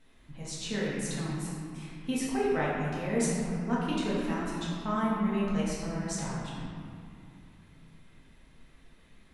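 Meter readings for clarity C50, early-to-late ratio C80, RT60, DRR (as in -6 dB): -2.0 dB, 0.0 dB, 2.4 s, -7.5 dB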